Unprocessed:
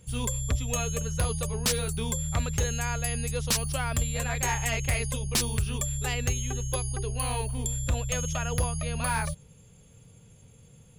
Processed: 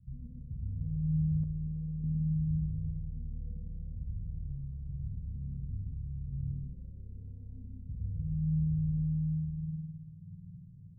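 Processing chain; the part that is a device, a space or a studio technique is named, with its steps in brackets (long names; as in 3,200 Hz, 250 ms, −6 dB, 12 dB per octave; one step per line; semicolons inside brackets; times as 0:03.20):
flutter between parallel walls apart 9.8 metres, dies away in 0.78 s
club heard from the street (brickwall limiter −27.5 dBFS, peak gain reduction 13 dB; low-pass filter 190 Hz 24 dB per octave; convolution reverb RT60 0.60 s, pre-delay 109 ms, DRR 0.5 dB)
spring reverb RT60 1.4 s, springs 51 ms, chirp 60 ms, DRR −0.5 dB
0:01.43–0:02.04: dynamic equaliser 180 Hz, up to −6 dB, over −39 dBFS, Q 0.77
level −4 dB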